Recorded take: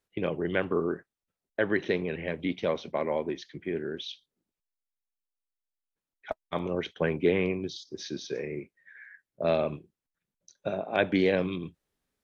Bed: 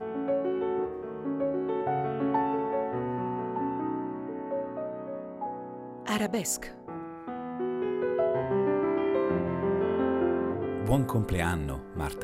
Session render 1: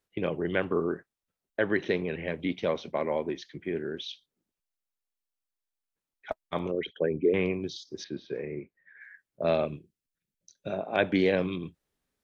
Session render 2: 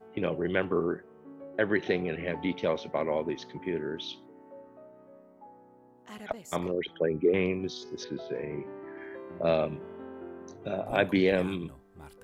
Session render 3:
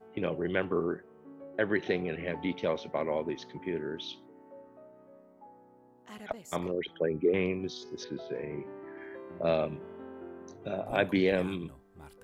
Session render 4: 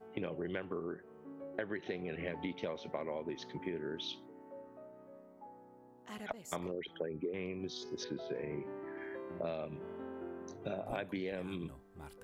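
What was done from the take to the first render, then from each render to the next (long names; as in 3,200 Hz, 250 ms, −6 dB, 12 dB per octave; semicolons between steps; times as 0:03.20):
0:06.71–0:07.34: spectral envelope exaggerated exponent 2; 0:08.04–0:09.01: high-frequency loss of the air 370 metres; 0:09.65–0:10.70: parametric band 920 Hz −13 dB 1.4 octaves
mix in bed −16.5 dB
level −2 dB
downward compressor 12 to 1, threshold −35 dBFS, peak gain reduction 15 dB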